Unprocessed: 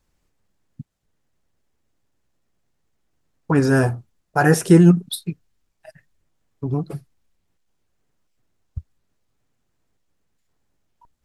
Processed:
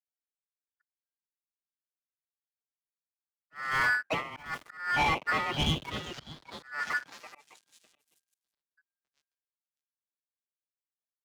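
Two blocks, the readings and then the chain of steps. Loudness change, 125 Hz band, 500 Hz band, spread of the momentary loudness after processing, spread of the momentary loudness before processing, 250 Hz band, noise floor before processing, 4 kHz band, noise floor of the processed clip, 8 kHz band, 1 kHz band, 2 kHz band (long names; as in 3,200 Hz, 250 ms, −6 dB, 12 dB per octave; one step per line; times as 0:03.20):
−12.5 dB, −20.0 dB, −18.0 dB, 18 LU, 21 LU, −22.5 dB, −71 dBFS, +1.5 dB, below −85 dBFS, −14.5 dB, −3.5 dB, −0.5 dB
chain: gap after every zero crossing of 0.17 ms
echo through a band-pass that steps 603 ms, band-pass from 900 Hz, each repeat 0.7 octaves, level −1.5 dB
ring modulation 1,600 Hz
reversed playback
downward compressor 16 to 1, threshold −27 dBFS, peak gain reduction 19.5 dB
reversed playback
high-pass filter 100 Hz 12 dB per octave
leveller curve on the samples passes 3
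volume swells 261 ms
high-shelf EQ 2,800 Hz −11 dB
in parallel at −3.5 dB: hard clipping −33.5 dBFS, distortion −6 dB
on the sum: multiband upward and downward expander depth 100%
level −5.5 dB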